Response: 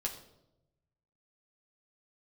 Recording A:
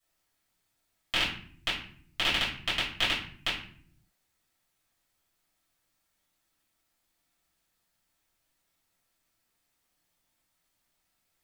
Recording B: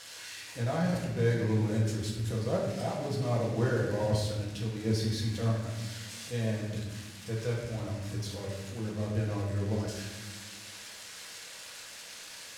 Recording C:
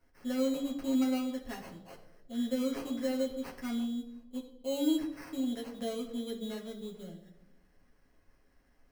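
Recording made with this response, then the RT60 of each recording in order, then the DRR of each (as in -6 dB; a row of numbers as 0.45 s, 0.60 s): C; 0.55 s, 1.3 s, 0.90 s; -11.5 dB, -4.0 dB, -2.0 dB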